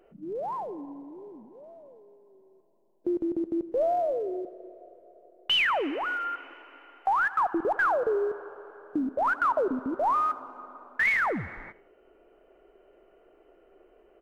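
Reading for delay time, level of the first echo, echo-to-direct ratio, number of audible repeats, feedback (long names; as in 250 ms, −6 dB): 82 ms, −19.0 dB, −18.5 dB, 2, 33%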